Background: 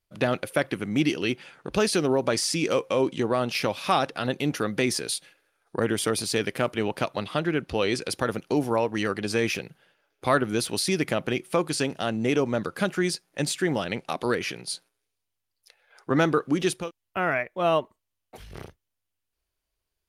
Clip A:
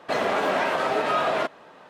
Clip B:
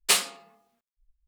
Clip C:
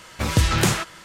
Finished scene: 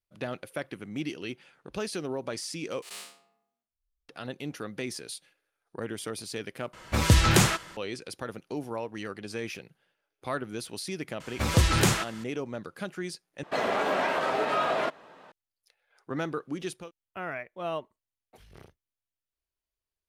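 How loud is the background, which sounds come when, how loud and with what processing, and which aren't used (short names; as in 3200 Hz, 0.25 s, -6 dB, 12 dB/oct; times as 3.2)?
background -10.5 dB
2.82 replace with B -14 dB + time blur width 0.163 s
6.73 replace with C -1 dB + mismatched tape noise reduction decoder only
11.2 add C -3.5 dB
13.43 replace with A -3.5 dB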